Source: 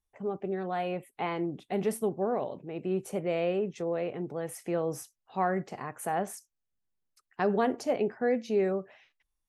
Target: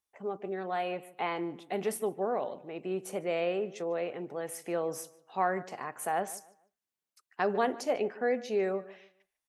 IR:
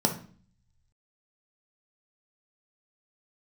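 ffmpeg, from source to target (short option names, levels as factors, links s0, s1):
-filter_complex "[0:a]highpass=f=500:p=1,asplit=2[s0][s1];[s1]adelay=148,lowpass=f=3000:p=1,volume=0.126,asplit=2[s2][s3];[s3]adelay=148,lowpass=f=3000:p=1,volume=0.29,asplit=2[s4][s5];[s5]adelay=148,lowpass=f=3000:p=1,volume=0.29[s6];[s2][s4][s6]amix=inputs=3:normalize=0[s7];[s0][s7]amix=inputs=2:normalize=0,volume=1.19"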